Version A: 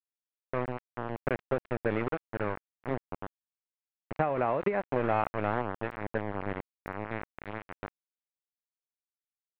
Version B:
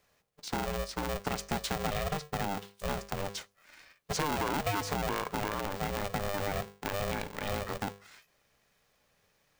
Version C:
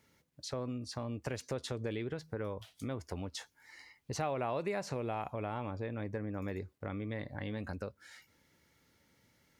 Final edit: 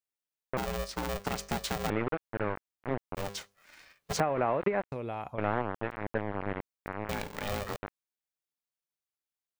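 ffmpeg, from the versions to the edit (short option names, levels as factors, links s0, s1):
-filter_complex "[1:a]asplit=3[s0][s1][s2];[0:a]asplit=5[s3][s4][s5][s6][s7];[s3]atrim=end=0.572[s8];[s0]atrim=start=0.568:end=1.902[s9];[s4]atrim=start=1.898:end=3.172[s10];[s1]atrim=start=3.168:end=4.202[s11];[s5]atrim=start=4.198:end=4.922[s12];[2:a]atrim=start=4.918:end=5.382[s13];[s6]atrim=start=5.378:end=7.092[s14];[s2]atrim=start=7.088:end=7.762[s15];[s7]atrim=start=7.758[s16];[s8][s9]acrossfade=d=0.004:c1=hsin:c2=hsin[s17];[s17][s10]acrossfade=d=0.004:c1=hsin:c2=hsin[s18];[s18][s11]acrossfade=d=0.004:c1=hsin:c2=hsin[s19];[s19][s12]acrossfade=d=0.004:c1=hsin:c2=hsin[s20];[s20][s13]acrossfade=d=0.004:c1=hsin:c2=hsin[s21];[s21][s14]acrossfade=d=0.004:c1=hsin:c2=hsin[s22];[s22][s15]acrossfade=d=0.004:c1=hsin:c2=hsin[s23];[s23][s16]acrossfade=d=0.004:c1=hsin:c2=hsin"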